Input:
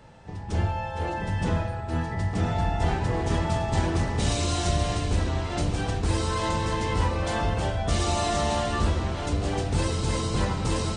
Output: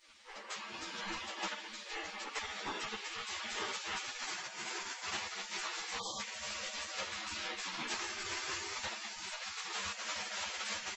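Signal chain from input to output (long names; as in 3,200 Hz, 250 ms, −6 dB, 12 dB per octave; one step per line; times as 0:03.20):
parametric band 120 Hz −5 dB 0.73 octaves
delay with a high-pass on its return 308 ms, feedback 39%, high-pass 1,400 Hz, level −7.5 dB
phase-vocoder pitch shift with formants kept −4 semitones
downward compressor 12 to 1, threshold −28 dBFS, peak gain reduction 9.5 dB
time-frequency box erased 0:05.97–0:06.19, 1,200–3,100 Hz
comb filter 7 ms, depth 91%
hum removal 47.34 Hz, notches 4
gate on every frequency bin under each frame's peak −25 dB weak
high-shelf EQ 3,100 Hz −9.5 dB
string-ensemble chorus
level +13.5 dB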